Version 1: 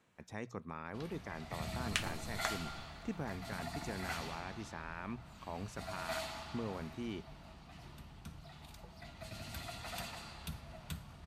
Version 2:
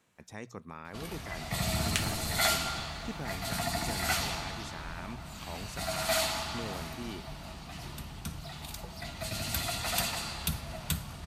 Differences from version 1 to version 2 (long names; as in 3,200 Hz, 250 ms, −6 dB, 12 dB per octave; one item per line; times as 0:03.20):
first sound +10.0 dB
master: add high-shelf EQ 4,800 Hz +9.5 dB